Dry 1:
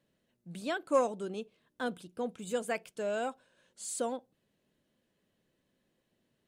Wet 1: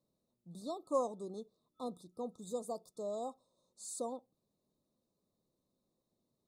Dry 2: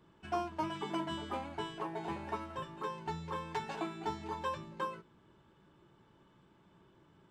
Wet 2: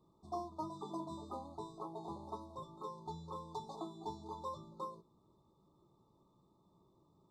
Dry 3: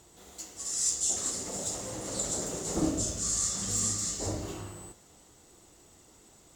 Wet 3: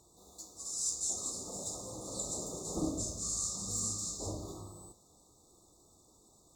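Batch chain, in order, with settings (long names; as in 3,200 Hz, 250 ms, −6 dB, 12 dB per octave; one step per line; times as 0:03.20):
brick-wall band-stop 1,300–3,500 Hz
level −6 dB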